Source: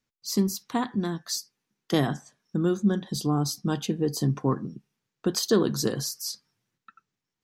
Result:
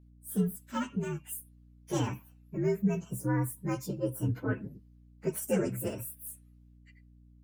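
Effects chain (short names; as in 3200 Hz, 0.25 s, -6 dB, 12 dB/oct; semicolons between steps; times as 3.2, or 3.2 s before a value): inharmonic rescaling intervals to 124%; hum 60 Hz, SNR 23 dB; gain -3.5 dB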